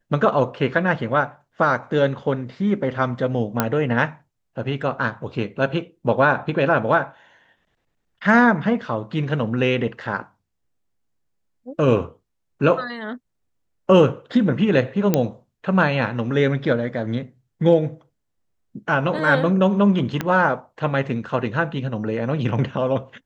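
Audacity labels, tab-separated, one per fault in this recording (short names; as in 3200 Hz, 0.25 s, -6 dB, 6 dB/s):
3.600000	3.600000	pop -3 dBFS
15.140000	15.140000	pop -4 dBFS
20.210000	20.210000	pop -9 dBFS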